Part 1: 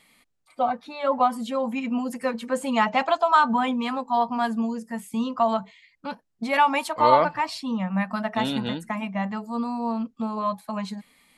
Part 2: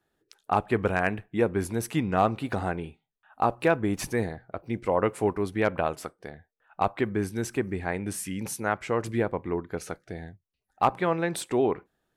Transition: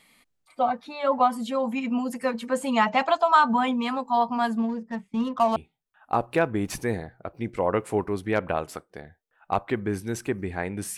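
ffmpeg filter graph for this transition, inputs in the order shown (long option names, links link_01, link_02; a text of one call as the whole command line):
ffmpeg -i cue0.wav -i cue1.wav -filter_complex "[0:a]asettb=1/sr,asplit=3[link_01][link_02][link_03];[link_01]atrim=end=4.574[link_04];[link_02]atrim=start=4.57:end=5.56,asetpts=PTS-STARTPTS,afade=type=in:duration=0.004:curve=qsin,afade=type=out:start_time=0.986:duration=0.004:curve=qsin,adynamicsmooth=sensitivity=7:basefreq=1300[link_05];[link_03]atrim=start=5.556[link_06];[link_04][link_05]acrossfade=duration=0.004:curve1=hsin:curve2=qsin[link_07];[link_07][link_06]acrossfade=duration=0.004:curve1=qsin:curve2=hsin,apad=whole_dur=10.97,atrim=end=10.97,atrim=end=5.562[link_08];[1:a]atrim=start=2.848:end=8.26[link_09];[link_08][link_09]acrossfade=duration=0.004:curve1=hsin:curve2=hsin" out.wav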